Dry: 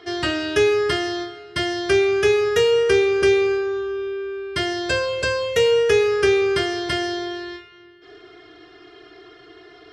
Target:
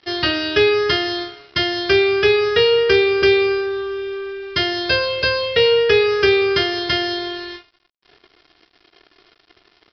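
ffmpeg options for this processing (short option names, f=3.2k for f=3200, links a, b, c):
-af "aemphasis=mode=production:type=75fm,aresample=11025,aeval=exprs='sgn(val(0))*max(abs(val(0))-0.00841,0)':c=same,aresample=44100,volume=3dB"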